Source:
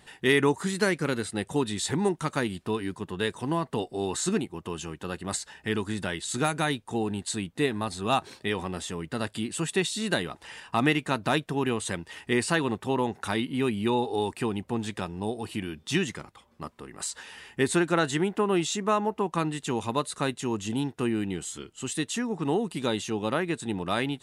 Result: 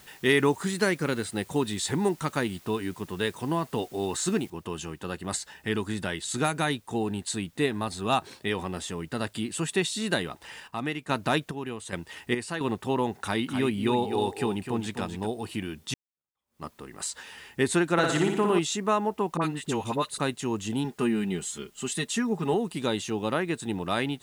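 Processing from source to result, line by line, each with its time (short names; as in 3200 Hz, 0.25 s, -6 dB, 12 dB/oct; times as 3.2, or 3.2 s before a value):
4.5 noise floor step -55 dB -66 dB
10.26–12.61 chopper 1.2 Hz, depth 60%
13.2–15.27 echo 0.254 s -8 dB
15.94–16.64 fade in exponential
17.92–18.59 flutter echo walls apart 10 m, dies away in 0.76 s
19.37–20.2 dispersion highs, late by 47 ms, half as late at 990 Hz
20.84–22.54 comb 4.9 ms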